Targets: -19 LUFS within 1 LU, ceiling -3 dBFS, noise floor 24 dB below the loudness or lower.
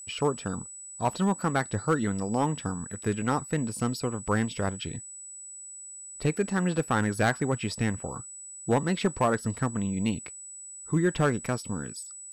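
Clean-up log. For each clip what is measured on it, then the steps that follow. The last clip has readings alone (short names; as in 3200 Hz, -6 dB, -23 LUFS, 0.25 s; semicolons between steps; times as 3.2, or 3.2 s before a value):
clipped 0.5%; flat tops at -16.5 dBFS; steady tone 7900 Hz; tone level -41 dBFS; loudness -29.0 LUFS; peak -16.5 dBFS; loudness target -19.0 LUFS
-> clip repair -16.5 dBFS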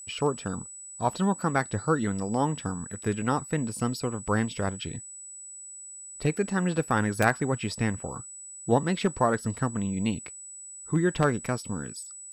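clipped 0.0%; steady tone 7900 Hz; tone level -41 dBFS
-> notch 7900 Hz, Q 30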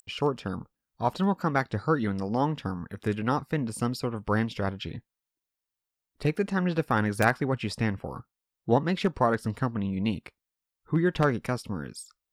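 steady tone none; loudness -28.5 LUFS; peak -7.5 dBFS; loudness target -19.0 LUFS
-> gain +9.5 dB; limiter -3 dBFS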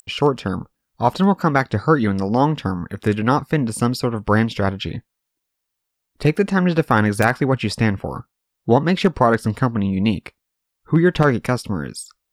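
loudness -19.5 LUFS; peak -3.0 dBFS; noise floor -79 dBFS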